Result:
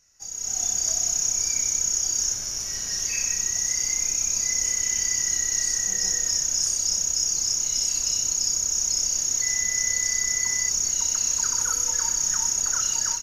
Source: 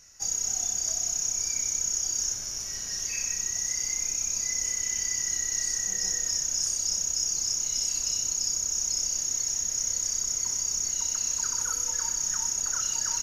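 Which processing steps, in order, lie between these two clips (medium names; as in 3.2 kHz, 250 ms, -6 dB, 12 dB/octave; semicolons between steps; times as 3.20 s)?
level rider gain up to 14.5 dB; 9.41–10.68 s: whistle 2 kHz -23 dBFS; trim -9 dB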